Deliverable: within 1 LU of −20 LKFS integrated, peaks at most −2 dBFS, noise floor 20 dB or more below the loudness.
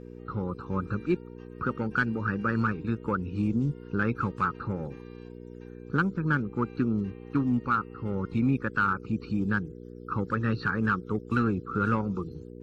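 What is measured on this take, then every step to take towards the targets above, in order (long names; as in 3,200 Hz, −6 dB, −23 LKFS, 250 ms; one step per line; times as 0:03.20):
mains hum 60 Hz; hum harmonics up to 480 Hz; level of the hum −42 dBFS; integrated loudness −29.5 LKFS; sample peak −13.0 dBFS; target loudness −20.0 LKFS
→ hum removal 60 Hz, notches 8
level +9.5 dB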